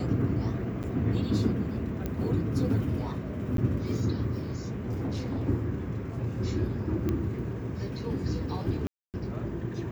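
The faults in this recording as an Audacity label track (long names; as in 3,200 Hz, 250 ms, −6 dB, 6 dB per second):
0.830000	0.840000	drop-out 8.2 ms
2.060000	2.060000	click −19 dBFS
3.570000	3.580000	drop-out 12 ms
4.650000	5.470000	clipping −28 dBFS
7.090000	7.090000	click −18 dBFS
8.870000	9.140000	drop-out 268 ms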